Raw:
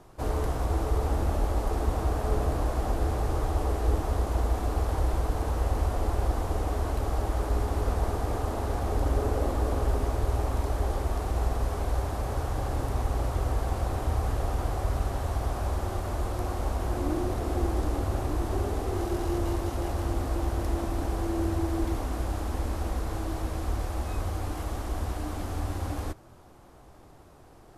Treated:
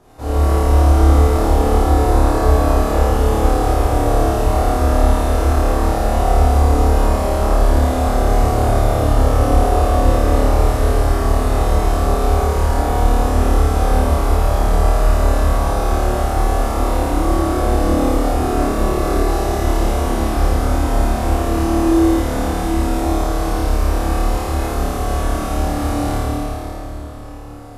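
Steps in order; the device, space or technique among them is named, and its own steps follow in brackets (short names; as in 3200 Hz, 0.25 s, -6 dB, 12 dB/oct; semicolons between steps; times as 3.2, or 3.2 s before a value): tunnel (flutter echo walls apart 4.7 m, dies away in 1.4 s; reverb RT60 3.7 s, pre-delay 12 ms, DRR -7 dB)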